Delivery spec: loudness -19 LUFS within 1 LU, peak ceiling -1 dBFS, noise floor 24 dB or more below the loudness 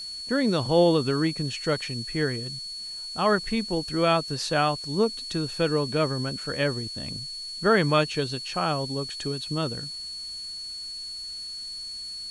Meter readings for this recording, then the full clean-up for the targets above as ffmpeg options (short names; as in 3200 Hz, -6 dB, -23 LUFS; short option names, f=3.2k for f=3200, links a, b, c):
steady tone 4400 Hz; tone level -34 dBFS; noise floor -37 dBFS; noise floor target -51 dBFS; loudness -26.5 LUFS; peak -9.0 dBFS; loudness target -19.0 LUFS
-> -af "bandreject=f=4.4k:w=30"
-af "afftdn=nr=14:nf=-37"
-af "volume=7.5dB"